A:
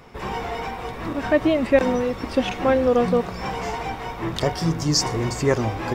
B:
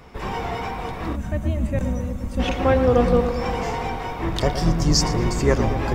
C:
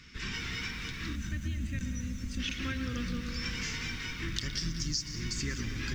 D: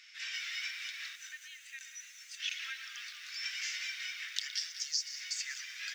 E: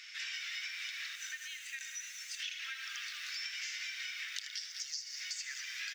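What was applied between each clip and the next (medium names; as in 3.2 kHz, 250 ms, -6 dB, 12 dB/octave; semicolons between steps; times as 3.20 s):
octave divider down 2 oct, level +1 dB; filtered feedback delay 115 ms, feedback 73%, low-pass 2.3 kHz, level -9 dB; time-frequency box 1.16–2.40 s, 240–5900 Hz -13 dB
FFT filter 280 Hz 0 dB, 730 Hz -28 dB, 1.5 kHz +5 dB, 6.1 kHz +14 dB, 10 kHz -4 dB; compression 12:1, threshold -22 dBFS, peak gain reduction 19 dB; bit-crushed delay 190 ms, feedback 35%, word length 7-bit, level -12 dB; trim -8.5 dB
inverse Chebyshev high-pass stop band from 490 Hz, stop band 60 dB
compression, threshold -45 dBFS, peak gain reduction 15.5 dB; delay 78 ms -10.5 dB; trim +6 dB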